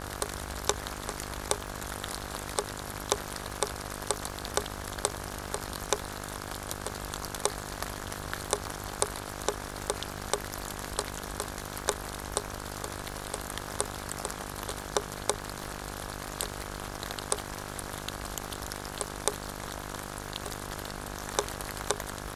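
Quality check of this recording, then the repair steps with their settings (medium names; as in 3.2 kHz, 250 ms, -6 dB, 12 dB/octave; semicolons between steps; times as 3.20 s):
buzz 50 Hz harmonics 34 -41 dBFS
crackle 59 per s -41 dBFS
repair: de-click; de-hum 50 Hz, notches 34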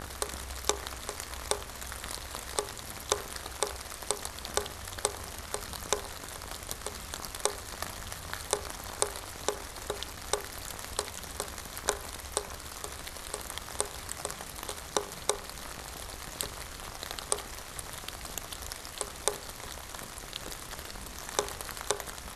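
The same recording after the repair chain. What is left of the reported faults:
nothing left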